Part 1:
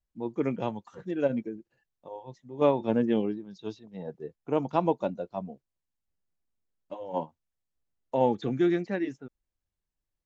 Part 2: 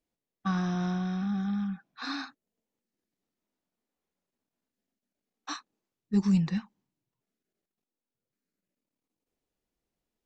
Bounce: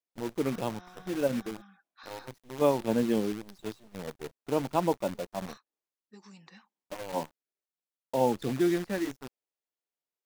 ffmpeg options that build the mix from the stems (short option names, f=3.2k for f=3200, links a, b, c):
-filter_complex "[0:a]acrusher=bits=7:dc=4:mix=0:aa=0.000001,volume=-1.5dB[a];[1:a]highpass=500,acompressor=threshold=-40dB:ratio=6,volume=-8.5dB[b];[a][b]amix=inputs=2:normalize=0"